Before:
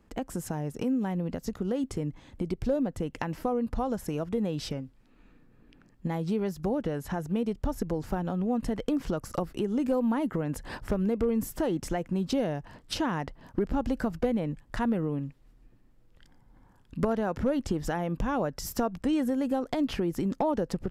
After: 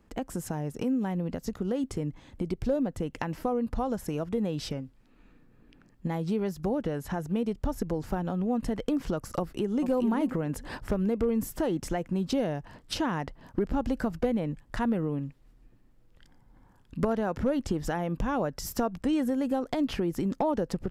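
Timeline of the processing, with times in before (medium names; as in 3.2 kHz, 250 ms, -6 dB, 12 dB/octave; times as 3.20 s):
9.39–9.90 s: echo throw 430 ms, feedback 15%, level -7.5 dB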